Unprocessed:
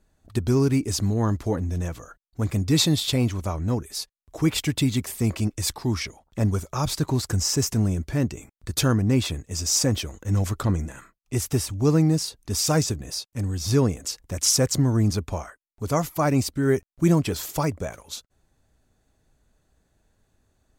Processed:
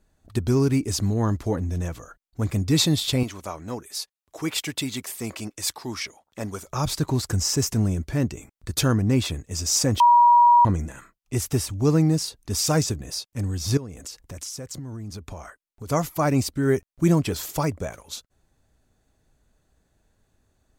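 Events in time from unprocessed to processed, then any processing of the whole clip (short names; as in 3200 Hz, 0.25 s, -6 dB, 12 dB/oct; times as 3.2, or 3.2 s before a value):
3.23–6.67 HPF 520 Hz 6 dB/oct
10–10.65 bleep 958 Hz -11 dBFS
13.77–15.89 compressor, threshold -33 dBFS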